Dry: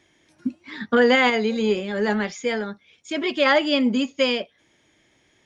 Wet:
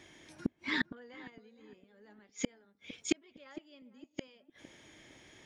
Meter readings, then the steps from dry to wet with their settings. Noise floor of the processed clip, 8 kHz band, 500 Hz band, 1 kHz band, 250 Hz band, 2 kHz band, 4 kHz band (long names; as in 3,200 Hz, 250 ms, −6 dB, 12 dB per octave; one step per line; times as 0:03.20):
−72 dBFS, can't be measured, −27.0 dB, −26.0 dB, −17.5 dB, −17.5 dB, −19.0 dB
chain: gate with flip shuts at −21 dBFS, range −41 dB
on a send: feedback echo with a low-pass in the loop 458 ms, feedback 37%, low-pass 970 Hz, level −14 dB
on the sum: level +4 dB